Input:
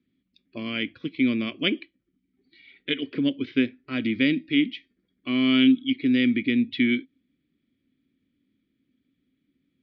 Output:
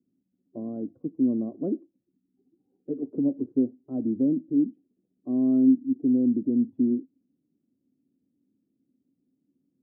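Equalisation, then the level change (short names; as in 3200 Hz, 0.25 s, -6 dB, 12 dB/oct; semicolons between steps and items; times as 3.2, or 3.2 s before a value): HPF 130 Hz 12 dB/oct; elliptic low-pass 800 Hz, stop band 60 dB; air absorption 220 m; 0.0 dB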